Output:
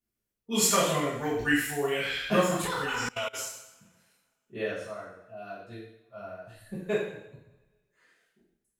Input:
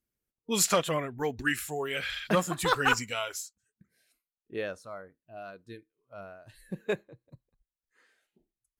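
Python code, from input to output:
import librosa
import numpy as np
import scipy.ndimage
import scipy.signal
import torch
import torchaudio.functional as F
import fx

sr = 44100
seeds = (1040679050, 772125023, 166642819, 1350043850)

y = fx.rev_double_slope(x, sr, seeds[0], early_s=0.76, late_s=2.2, knee_db=-27, drr_db=-10.0)
y = fx.level_steps(y, sr, step_db=23, at=(2.62, 3.33), fade=0.02)
y = y * librosa.db_to_amplitude(-8.0)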